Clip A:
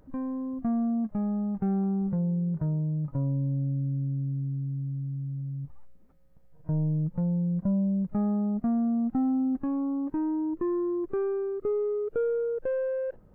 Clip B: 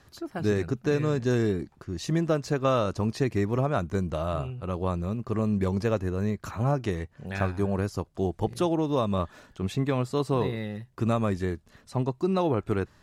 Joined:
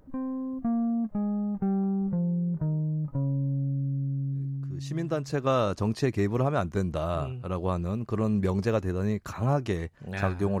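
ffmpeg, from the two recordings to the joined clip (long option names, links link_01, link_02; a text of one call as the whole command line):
ffmpeg -i cue0.wav -i cue1.wav -filter_complex "[0:a]apad=whole_dur=10.6,atrim=end=10.6,atrim=end=5.64,asetpts=PTS-STARTPTS[link_01];[1:a]atrim=start=1.5:end=7.78,asetpts=PTS-STARTPTS[link_02];[link_01][link_02]acrossfade=duration=1.32:curve1=tri:curve2=tri" out.wav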